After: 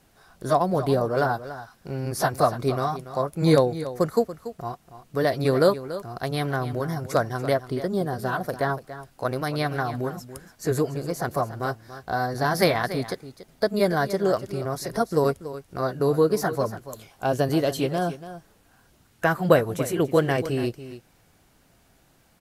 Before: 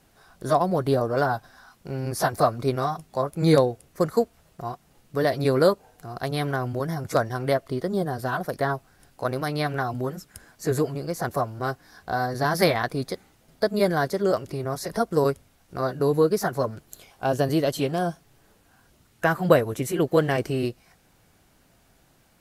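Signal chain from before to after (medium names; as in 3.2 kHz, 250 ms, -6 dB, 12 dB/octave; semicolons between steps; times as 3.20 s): delay 285 ms -13.5 dB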